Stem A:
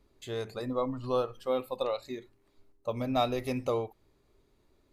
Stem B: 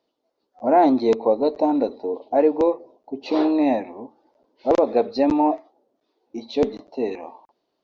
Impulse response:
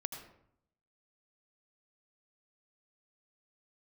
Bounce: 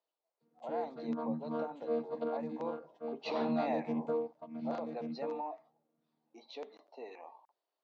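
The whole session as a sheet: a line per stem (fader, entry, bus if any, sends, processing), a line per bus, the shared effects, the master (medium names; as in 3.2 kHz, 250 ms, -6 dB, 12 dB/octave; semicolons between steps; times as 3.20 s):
-4.5 dB, 0.40 s, no send, echo send -5.5 dB, vocoder on a held chord bare fifth, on D#3; treble shelf 4.1 kHz -8.5 dB
2.46 s -11 dB -> 2.82 s -2 dB -> 4.26 s -2 dB -> 4.50 s -9.5 dB, 0.00 s, no send, no echo send, compression 3:1, threshold -23 dBFS, peak gain reduction 9 dB; high-pass 740 Hz 12 dB/octave; treble shelf 3.1 kHz -8.5 dB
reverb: none
echo: delay 1135 ms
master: none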